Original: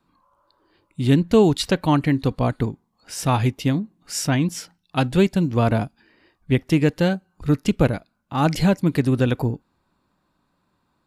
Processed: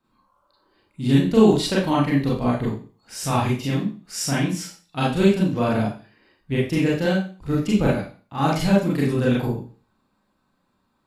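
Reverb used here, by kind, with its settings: Schroeder reverb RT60 0.38 s, combs from 29 ms, DRR -6 dB; trim -7 dB

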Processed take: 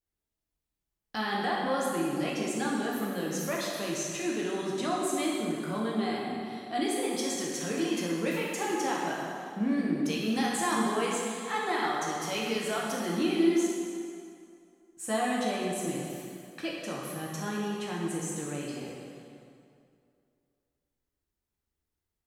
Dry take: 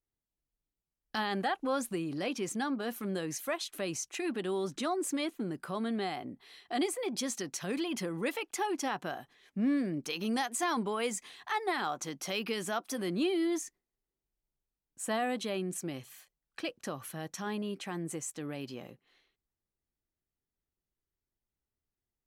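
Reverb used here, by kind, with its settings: plate-style reverb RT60 2.4 s, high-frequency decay 0.75×, DRR -4.5 dB; trim -2 dB

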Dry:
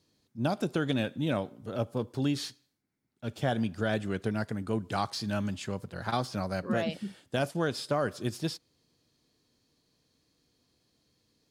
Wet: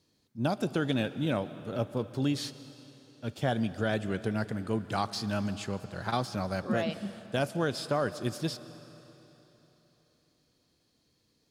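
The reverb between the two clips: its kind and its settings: algorithmic reverb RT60 3.6 s, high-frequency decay 0.95×, pre-delay 95 ms, DRR 14.5 dB

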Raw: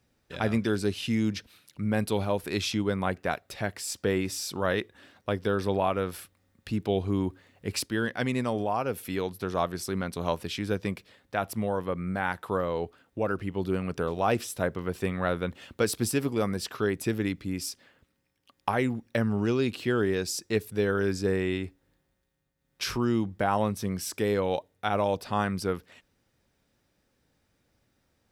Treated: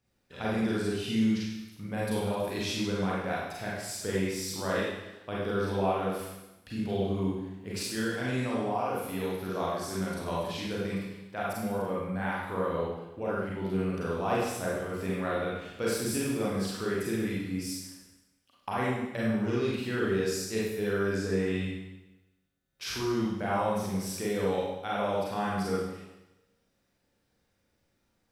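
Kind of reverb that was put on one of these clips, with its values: Schroeder reverb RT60 0.98 s, combs from 32 ms, DRR -6.5 dB; trim -9.5 dB

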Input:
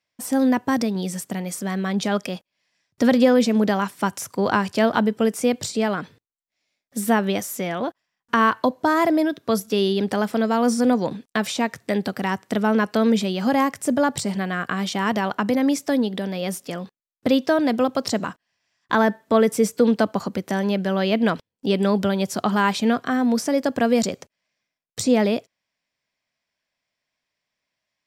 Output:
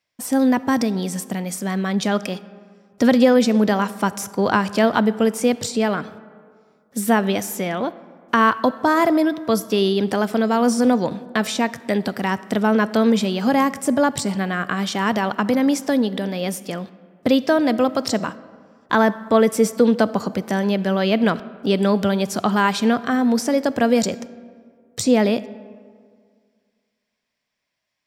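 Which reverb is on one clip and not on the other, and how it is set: algorithmic reverb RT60 2 s, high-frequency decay 0.5×, pre-delay 5 ms, DRR 16.5 dB; trim +2 dB

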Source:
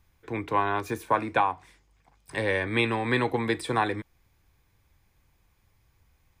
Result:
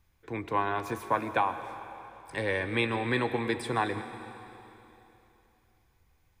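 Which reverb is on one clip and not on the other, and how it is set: algorithmic reverb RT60 3.1 s, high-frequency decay 1×, pre-delay 80 ms, DRR 10 dB; trim -3.5 dB

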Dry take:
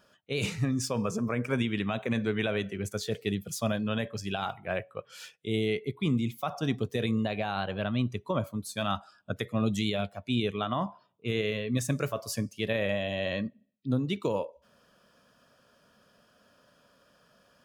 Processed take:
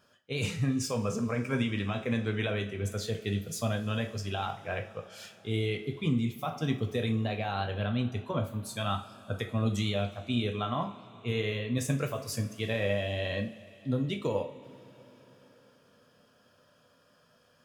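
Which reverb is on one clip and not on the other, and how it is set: two-slope reverb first 0.31 s, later 4.4 s, from -22 dB, DRR 3.5 dB; trim -3 dB

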